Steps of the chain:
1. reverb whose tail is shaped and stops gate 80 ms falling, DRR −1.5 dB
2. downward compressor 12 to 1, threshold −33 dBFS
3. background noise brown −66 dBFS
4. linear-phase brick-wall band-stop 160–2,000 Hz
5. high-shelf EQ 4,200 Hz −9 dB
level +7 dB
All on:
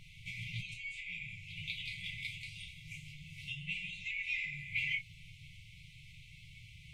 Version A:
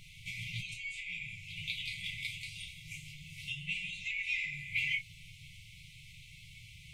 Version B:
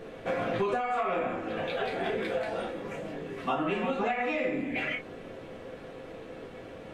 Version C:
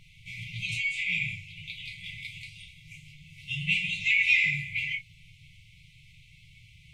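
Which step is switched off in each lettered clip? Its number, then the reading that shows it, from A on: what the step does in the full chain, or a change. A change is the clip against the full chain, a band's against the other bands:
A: 5, 8 kHz band +6.0 dB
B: 4, 250 Hz band +19.5 dB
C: 2, average gain reduction 4.5 dB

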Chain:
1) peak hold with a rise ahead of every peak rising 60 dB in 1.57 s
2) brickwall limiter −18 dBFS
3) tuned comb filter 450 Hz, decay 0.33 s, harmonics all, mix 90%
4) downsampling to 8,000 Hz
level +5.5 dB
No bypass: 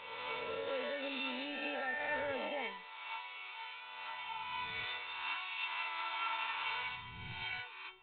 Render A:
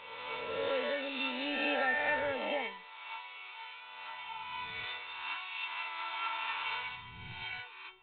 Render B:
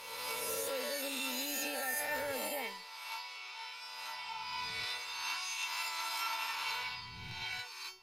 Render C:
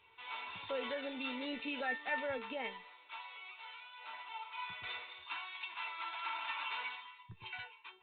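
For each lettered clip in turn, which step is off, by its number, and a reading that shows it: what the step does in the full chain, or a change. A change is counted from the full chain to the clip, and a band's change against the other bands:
2, average gain reduction 1.5 dB
4, 4 kHz band +4.0 dB
1, 250 Hz band +4.0 dB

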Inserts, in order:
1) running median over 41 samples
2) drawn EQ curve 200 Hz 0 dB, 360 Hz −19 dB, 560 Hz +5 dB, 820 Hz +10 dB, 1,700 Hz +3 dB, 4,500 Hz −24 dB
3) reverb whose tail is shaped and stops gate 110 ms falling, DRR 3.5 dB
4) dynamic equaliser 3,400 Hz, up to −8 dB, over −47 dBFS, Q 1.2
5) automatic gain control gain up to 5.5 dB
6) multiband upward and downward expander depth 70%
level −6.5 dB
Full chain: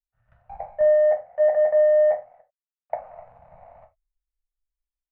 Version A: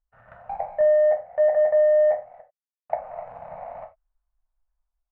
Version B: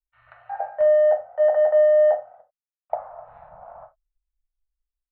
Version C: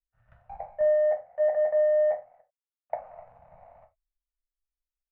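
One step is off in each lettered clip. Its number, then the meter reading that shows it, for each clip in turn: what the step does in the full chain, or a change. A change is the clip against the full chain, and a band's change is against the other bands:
6, change in crest factor +2.0 dB
1, change in momentary loudness spread −1 LU
5, change in momentary loudness spread −2 LU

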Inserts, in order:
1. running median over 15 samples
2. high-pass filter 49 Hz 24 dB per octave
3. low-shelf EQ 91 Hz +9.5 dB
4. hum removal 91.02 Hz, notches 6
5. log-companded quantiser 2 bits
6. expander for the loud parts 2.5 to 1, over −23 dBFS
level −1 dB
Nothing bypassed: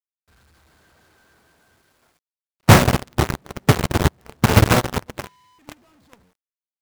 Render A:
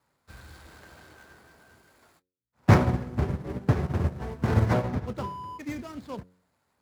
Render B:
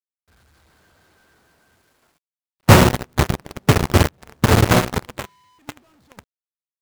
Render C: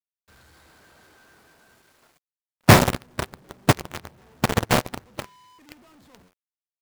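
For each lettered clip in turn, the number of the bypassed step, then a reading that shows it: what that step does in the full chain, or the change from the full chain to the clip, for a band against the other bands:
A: 5, distortion level −1 dB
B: 4, change in integrated loudness +1.0 LU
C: 3, 125 Hz band −3.0 dB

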